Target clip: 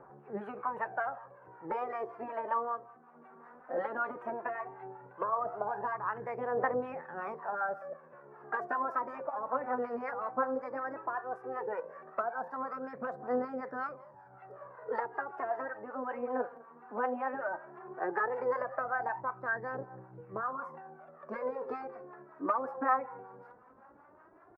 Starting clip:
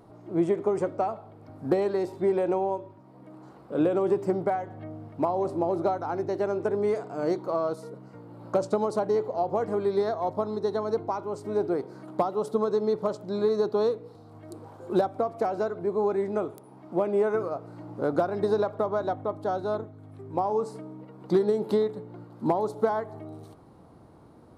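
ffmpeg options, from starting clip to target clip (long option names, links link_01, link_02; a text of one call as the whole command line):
ffmpeg -i in.wav -filter_complex "[0:a]aecho=1:1:193:0.0708,asetrate=53981,aresample=44100,atempo=0.816958,acrossover=split=520 2900:gain=0.251 1 0.0631[link_01][link_02][link_03];[link_01][link_02][link_03]amix=inputs=3:normalize=0,afftfilt=real='re*lt(hypot(re,im),0.316)':imag='im*lt(hypot(re,im),0.316)':win_size=1024:overlap=0.75,aphaser=in_gain=1:out_gain=1:delay=4.4:decay=0.63:speed=0.15:type=triangular,acrossover=split=660[link_04][link_05];[link_04]aeval=exprs='val(0)*(1-0.7/2+0.7/2*cos(2*PI*5.3*n/s))':channel_layout=same[link_06];[link_05]aeval=exprs='val(0)*(1-0.7/2-0.7/2*cos(2*PI*5.3*n/s))':channel_layout=same[link_07];[link_06][link_07]amix=inputs=2:normalize=0,highshelf=frequency=2400:width_type=q:width=1.5:gain=-10" out.wav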